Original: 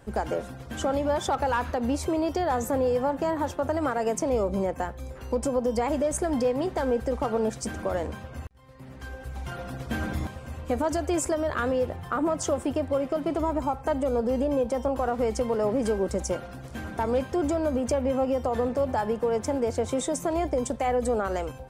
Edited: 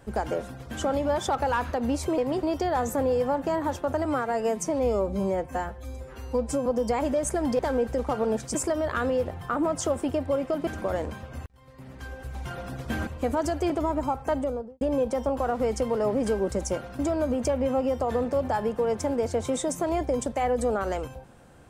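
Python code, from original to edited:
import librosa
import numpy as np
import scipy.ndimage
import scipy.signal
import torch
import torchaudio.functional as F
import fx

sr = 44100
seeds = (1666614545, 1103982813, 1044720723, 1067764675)

y = fx.studio_fade_out(x, sr, start_s=13.91, length_s=0.49)
y = fx.edit(y, sr, fx.stretch_span(start_s=3.8, length_s=1.74, factor=1.5),
    fx.move(start_s=6.47, length_s=0.25, to_s=2.18),
    fx.cut(start_s=10.08, length_s=0.46),
    fx.move(start_s=11.17, length_s=2.12, to_s=7.68),
    fx.cut(start_s=16.58, length_s=0.85), tone=tone)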